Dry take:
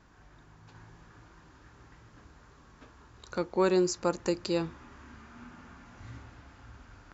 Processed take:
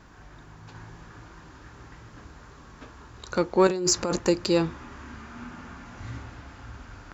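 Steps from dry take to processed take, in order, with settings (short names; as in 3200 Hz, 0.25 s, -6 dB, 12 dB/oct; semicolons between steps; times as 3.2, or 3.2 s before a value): in parallel at -8 dB: soft clip -29 dBFS, distortion -7 dB; 3.67–4.19 on the sum: negative-ratio compressor -31 dBFS, ratio -1; gain +5.5 dB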